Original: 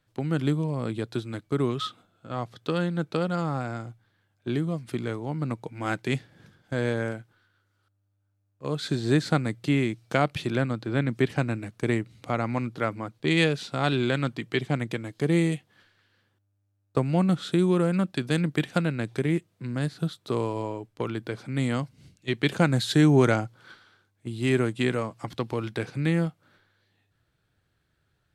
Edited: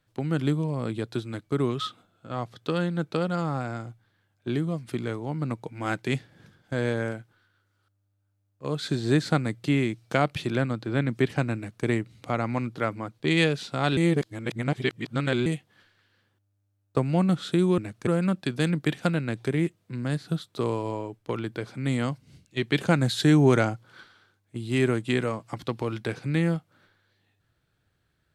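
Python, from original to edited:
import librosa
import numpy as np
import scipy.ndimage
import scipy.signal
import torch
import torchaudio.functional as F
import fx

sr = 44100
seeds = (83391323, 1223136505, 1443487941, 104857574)

y = fx.edit(x, sr, fx.duplicate(start_s=11.56, length_s=0.29, to_s=17.78),
    fx.reverse_span(start_s=13.97, length_s=1.49), tone=tone)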